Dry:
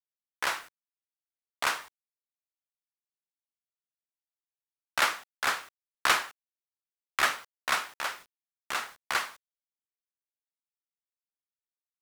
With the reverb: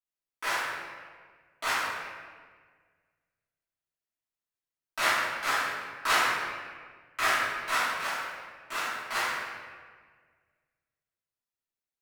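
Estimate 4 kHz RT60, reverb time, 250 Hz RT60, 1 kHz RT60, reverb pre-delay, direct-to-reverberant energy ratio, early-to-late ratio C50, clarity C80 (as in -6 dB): 1.1 s, 1.6 s, 1.9 s, 1.5 s, 3 ms, -14.0 dB, -2.0 dB, 0.5 dB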